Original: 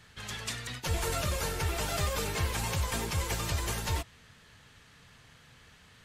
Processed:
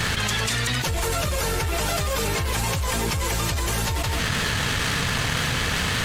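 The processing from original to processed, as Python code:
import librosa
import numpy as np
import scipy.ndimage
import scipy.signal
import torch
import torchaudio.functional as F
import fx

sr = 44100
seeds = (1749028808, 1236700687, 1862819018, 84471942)

y = fx.leveller(x, sr, passes=1)
y = y + 10.0 ** (-22.0 / 20.0) * np.pad(y, (int(166 * sr / 1000.0), 0))[:len(y)]
y = fx.env_flatten(y, sr, amount_pct=100)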